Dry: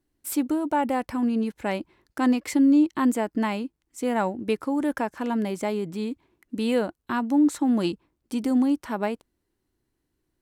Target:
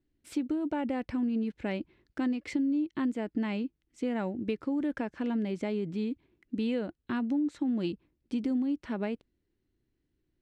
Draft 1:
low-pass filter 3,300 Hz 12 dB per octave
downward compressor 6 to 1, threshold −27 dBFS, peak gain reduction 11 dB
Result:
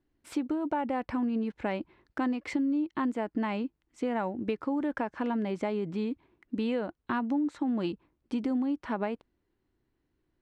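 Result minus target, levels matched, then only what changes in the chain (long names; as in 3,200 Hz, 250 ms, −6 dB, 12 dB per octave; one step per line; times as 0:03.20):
1,000 Hz band +7.0 dB
add after low-pass filter: parametric band 970 Hz −11.5 dB 1.5 octaves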